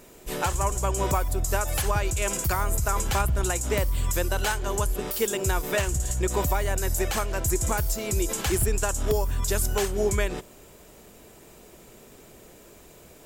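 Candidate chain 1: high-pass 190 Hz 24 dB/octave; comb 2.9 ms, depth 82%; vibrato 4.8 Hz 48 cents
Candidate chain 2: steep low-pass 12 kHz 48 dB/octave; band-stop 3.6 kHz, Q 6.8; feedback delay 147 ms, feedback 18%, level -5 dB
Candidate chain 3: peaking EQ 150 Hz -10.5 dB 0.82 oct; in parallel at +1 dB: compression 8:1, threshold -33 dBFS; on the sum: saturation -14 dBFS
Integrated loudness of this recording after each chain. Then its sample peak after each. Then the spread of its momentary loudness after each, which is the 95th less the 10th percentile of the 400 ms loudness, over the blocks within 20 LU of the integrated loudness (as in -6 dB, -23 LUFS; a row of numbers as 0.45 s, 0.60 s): -25.5 LUFS, -25.5 LUFS, -25.5 LUFS; -10.0 dBFS, -10.0 dBFS, -14.5 dBFS; 4 LU, 3 LU, 19 LU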